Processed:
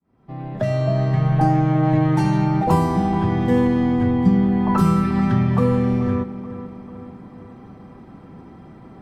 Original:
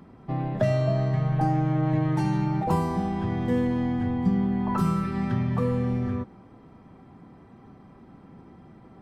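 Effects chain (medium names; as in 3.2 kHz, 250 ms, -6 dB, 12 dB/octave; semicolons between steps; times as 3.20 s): fade-in on the opening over 1.26 s; filtered feedback delay 434 ms, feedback 54%, low-pass 2.7 kHz, level -14 dB; trim +7 dB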